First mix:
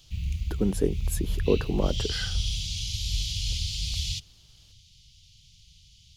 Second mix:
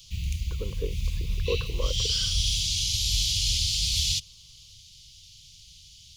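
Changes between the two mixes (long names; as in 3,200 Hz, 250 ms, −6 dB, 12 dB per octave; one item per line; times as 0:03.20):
speech: add pair of resonant band-passes 740 Hz, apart 1.1 octaves
master: add high-shelf EQ 2,900 Hz +10.5 dB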